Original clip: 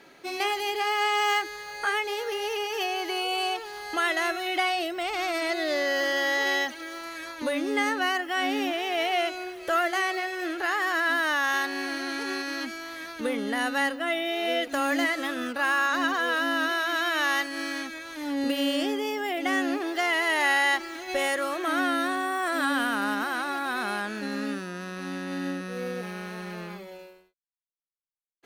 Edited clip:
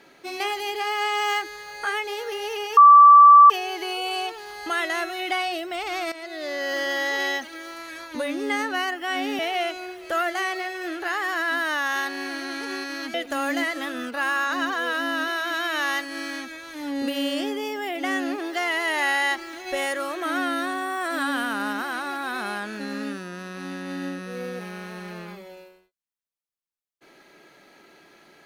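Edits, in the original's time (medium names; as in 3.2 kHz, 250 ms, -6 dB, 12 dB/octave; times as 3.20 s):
2.77 s: add tone 1.16 kHz -6.5 dBFS 0.73 s
5.39–6.08 s: fade in, from -13 dB
8.66–8.97 s: delete
12.72–14.56 s: delete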